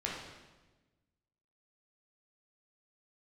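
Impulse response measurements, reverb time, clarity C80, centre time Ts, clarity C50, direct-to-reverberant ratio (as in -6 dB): 1.2 s, 4.0 dB, 64 ms, 1.0 dB, -4.0 dB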